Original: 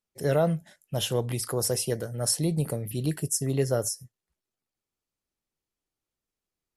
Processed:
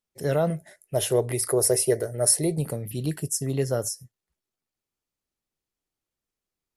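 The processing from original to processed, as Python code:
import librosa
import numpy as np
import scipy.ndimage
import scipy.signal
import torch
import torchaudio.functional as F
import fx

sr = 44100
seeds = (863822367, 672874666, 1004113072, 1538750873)

y = fx.graphic_eq_31(x, sr, hz=(200, 400, 630, 2000, 3150, 10000), db=(-10, 12, 9, 8, -6, 10), at=(0.5, 2.58))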